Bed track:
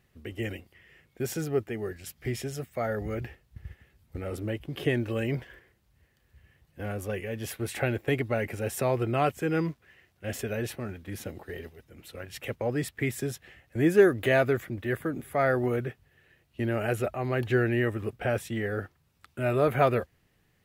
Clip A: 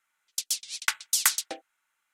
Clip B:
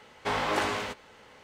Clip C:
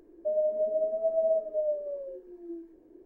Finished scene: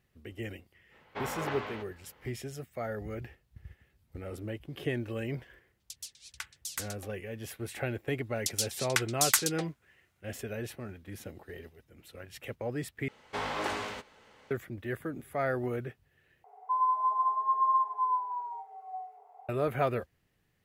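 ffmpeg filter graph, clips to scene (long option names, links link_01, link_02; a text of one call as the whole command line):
ffmpeg -i bed.wav -i cue0.wav -i cue1.wav -i cue2.wav -filter_complex "[2:a]asplit=2[link_01][link_02];[1:a]asplit=2[link_03][link_04];[0:a]volume=-6dB[link_05];[link_01]lowpass=3100[link_06];[3:a]afreqshift=410[link_07];[link_05]asplit=3[link_08][link_09][link_10];[link_08]atrim=end=13.084[link_11];[link_02]atrim=end=1.43,asetpts=PTS-STARTPTS,volume=-5.5dB[link_12];[link_09]atrim=start=14.506:end=16.444[link_13];[link_07]atrim=end=3.05[link_14];[link_10]atrim=start=19.486[link_15];[link_06]atrim=end=1.43,asetpts=PTS-STARTPTS,volume=-8dB,afade=type=in:duration=0.05,afade=type=out:start_time=1.38:duration=0.05,adelay=900[link_16];[link_03]atrim=end=2.13,asetpts=PTS-STARTPTS,volume=-15dB,afade=type=in:duration=0.004:curve=hsin,afade=type=out:start_time=2.126:duration=0.004:curve=hsin,adelay=5520[link_17];[link_04]atrim=end=2.13,asetpts=PTS-STARTPTS,volume=-2.5dB,afade=type=in:duration=0.004:curve=hsin,afade=type=out:start_time=2.126:duration=0.004:curve=hsin,adelay=8080[link_18];[link_11][link_12]acrossfade=duration=0.004:curve1=hsin:curve2=hsin[link_19];[link_19][link_13]acrossfade=duration=0.004:curve1=hsin:curve2=hsin[link_20];[link_20][link_14]acrossfade=duration=0.004:curve1=hsin:curve2=hsin[link_21];[link_21][link_15]acrossfade=duration=0.004:curve1=hsin:curve2=hsin[link_22];[link_22][link_16][link_17][link_18]amix=inputs=4:normalize=0" out.wav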